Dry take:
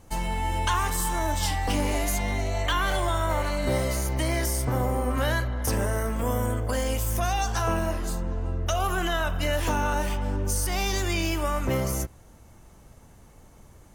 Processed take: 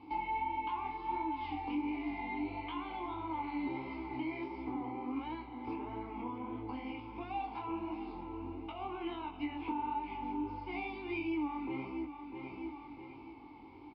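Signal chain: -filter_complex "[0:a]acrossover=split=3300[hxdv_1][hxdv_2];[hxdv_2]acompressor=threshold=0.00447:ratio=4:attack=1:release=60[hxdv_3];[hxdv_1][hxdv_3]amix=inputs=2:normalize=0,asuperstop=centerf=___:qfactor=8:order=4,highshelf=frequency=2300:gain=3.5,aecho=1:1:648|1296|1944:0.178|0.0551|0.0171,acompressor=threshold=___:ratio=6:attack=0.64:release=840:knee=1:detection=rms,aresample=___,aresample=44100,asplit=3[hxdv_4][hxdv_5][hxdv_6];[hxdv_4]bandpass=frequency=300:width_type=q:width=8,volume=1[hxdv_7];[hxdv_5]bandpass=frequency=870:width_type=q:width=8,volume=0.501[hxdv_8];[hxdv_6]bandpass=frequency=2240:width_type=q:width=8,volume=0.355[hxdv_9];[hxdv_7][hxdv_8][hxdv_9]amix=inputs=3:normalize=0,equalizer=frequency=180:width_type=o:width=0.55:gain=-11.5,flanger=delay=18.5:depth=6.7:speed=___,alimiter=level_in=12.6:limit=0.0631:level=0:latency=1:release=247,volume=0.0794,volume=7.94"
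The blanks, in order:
1900, 0.0251, 11025, 1.5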